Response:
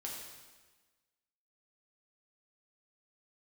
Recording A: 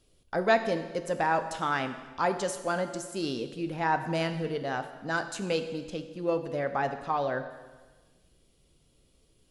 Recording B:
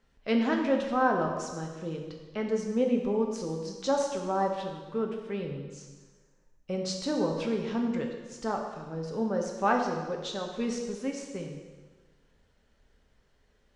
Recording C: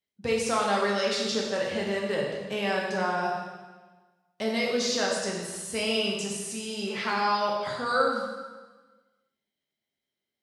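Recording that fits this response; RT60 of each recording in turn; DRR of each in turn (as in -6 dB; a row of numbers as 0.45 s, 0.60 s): C; 1.3 s, 1.3 s, 1.3 s; 8.0 dB, 1.5 dB, -3.0 dB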